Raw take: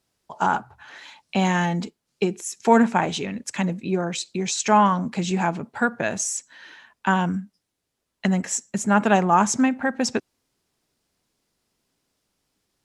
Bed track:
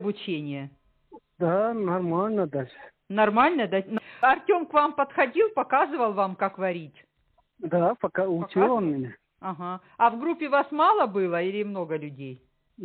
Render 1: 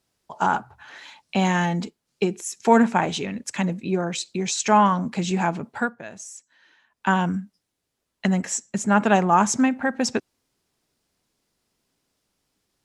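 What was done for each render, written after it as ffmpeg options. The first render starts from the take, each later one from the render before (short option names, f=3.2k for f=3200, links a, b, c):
-filter_complex "[0:a]asettb=1/sr,asplit=3[a][b][c];[a]atrim=end=8.514[d];[b]atrim=start=8.51:end=9.11,asetpts=PTS-STARTPTS,afade=t=in:d=0.004:c=qsin,afade=t=out:st=0.596:d=0.004:c=qsin,lowpass=9.6k[e];[c]atrim=start=9.106[f];[d][e]acrossfade=d=0.004:c1=hsin:c2=qsin[g];[g][f]acrossfade=d=0.004:c1=qsin:c2=hsin,asplit=3[h][i][j];[h]atrim=end=5.95,asetpts=PTS-STARTPTS,afade=t=out:st=5.78:d=0.17:silence=0.223872[k];[i]atrim=start=5.95:end=6.9,asetpts=PTS-STARTPTS,volume=-13dB[l];[j]atrim=start=6.9,asetpts=PTS-STARTPTS,afade=t=in:d=0.17:silence=0.223872[m];[k][l][m]concat=n=3:v=0:a=1"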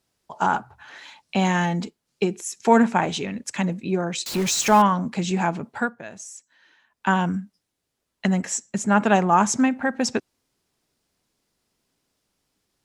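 -filter_complex "[0:a]asettb=1/sr,asplit=3[a][b][c];[a]atrim=end=4.264[d];[b]atrim=start=4.26:end=4.82,asetpts=PTS-STARTPTS,afade=t=in:d=0.004:c=qsin,afade=t=out:st=0.556:d=0.004:c=qsin,aeval=exprs='val(0)+0.5*0.0531*sgn(val(0))':c=same[e];[c]atrim=start=4.816[f];[d][e]acrossfade=d=0.004:c1=hsin:c2=qsin[g];[g][f]acrossfade=d=0.004:c1=qsin:c2=hsin"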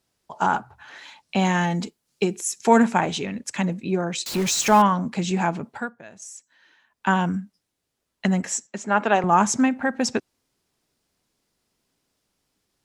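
-filter_complex "[0:a]asettb=1/sr,asplit=3[a][b][c];[a]atrim=end=1.704[d];[b]atrim=start=1.7:end=3,asetpts=PTS-STARTPTS,afade=t=in:d=0.004:c=qsin,afade=t=out:st=1.296:d=0.004:c=qsin,highshelf=f=5.6k:g=7[e];[c]atrim=start=2.996[f];[d][e]acrossfade=d=0.004:c1=hsin:c2=qsin[g];[g][f]acrossfade=d=0.004:c1=qsin:c2=hsin,asettb=1/sr,asplit=3[h][i][j];[h]atrim=end=8.674[k];[i]atrim=start=8.67:end=9.24,asetpts=PTS-STARTPTS,afade=t=in:d=0.004:c=qsin,afade=t=out:st=0.566:d=0.004:c=qsin,highpass=320,lowpass=5k[l];[j]atrim=start=9.236[m];[k][l]acrossfade=d=0.004:c1=hsin:c2=qsin[n];[n][m]acrossfade=d=0.004:c1=qsin:c2=hsin,asplit=3[o][p][q];[o]atrim=end=5.772[r];[p]atrim=start=5.768:end=6.222,asetpts=PTS-STARTPTS,volume=-5.5dB[s];[q]atrim=start=6.218[t];[r][s]acrossfade=d=0.004:c1=hsin:c2=hsin[u];[u][t]acrossfade=d=0.004:c1=hsin:c2=hsin"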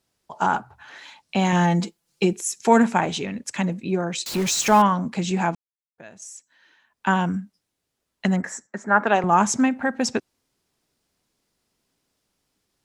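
-filter_complex "[0:a]asettb=1/sr,asplit=3[a][b][c];[a]atrim=end=1.524[d];[b]atrim=start=1.52:end=2.33,asetpts=PTS-STARTPTS,afade=t=in:d=0.004:c=qsin,afade=t=out:st=0.806:d=0.004:c=qsin,aecho=1:1:5.9:0.69,atrim=end_sample=35721[e];[c]atrim=start=2.326[f];[d][e]acrossfade=d=0.004:c1=hsin:c2=qsin[g];[g][f]acrossfade=d=0.004:c1=qsin:c2=hsin,asettb=1/sr,asplit=3[h][i][j];[h]atrim=end=8.364[k];[i]atrim=start=8.36:end=9.07,asetpts=PTS-STARTPTS,afade=t=in:d=0.004:c=qsin,afade=t=out:st=0.706:d=0.004:c=qsin,highshelf=f=2.2k:t=q:w=3:g=-8[l];[j]atrim=start=9.066[m];[k][l]acrossfade=d=0.004:c1=hsin:c2=qsin[n];[n][m]acrossfade=d=0.004:c1=qsin:c2=hsin,asplit=3[o][p][q];[o]atrim=end=5.55,asetpts=PTS-STARTPTS,afade=t=out:st=5.546:d=0.004:c=hsin[r];[p]atrim=start=5.55:end=5.98,asetpts=PTS-STARTPTS,volume=0[s];[q]atrim=start=5.98,asetpts=PTS-STARTPTS,afade=t=in:d=0.004:c=hsin[t];[r][s][t]concat=n=3:v=0:a=1"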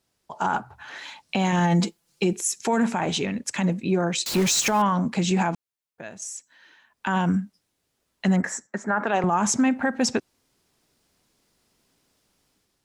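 -af "dynaudnorm=f=480:g=3:m=6dB,alimiter=limit=-13dB:level=0:latency=1:release=45"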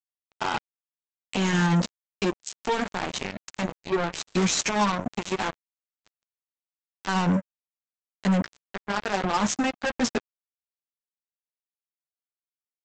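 -af "flanger=delay=7.5:depth=7.9:regen=-8:speed=0.17:shape=sinusoidal,aresample=16000,acrusher=bits=3:mix=0:aa=0.5,aresample=44100"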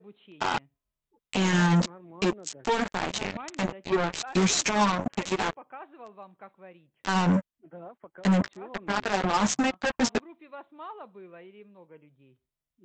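-filter_complex "[1:a]volume=-21.5dB[a];[0:a][a]amix=inputs=2:normalize=0"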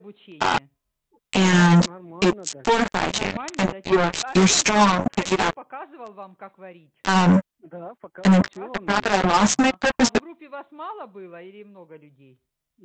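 -af "volume=7dB"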